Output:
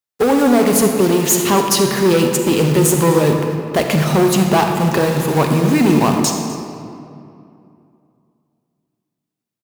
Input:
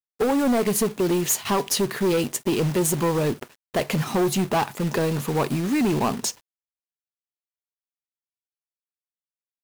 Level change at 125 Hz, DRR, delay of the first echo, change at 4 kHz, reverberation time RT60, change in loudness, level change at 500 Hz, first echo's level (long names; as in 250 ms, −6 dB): +10.0 dB, 3.5 dB, 253 ms, +8.0 dB, 2.6 s, +8.5 dB, +9.0 dB, −18.0 dB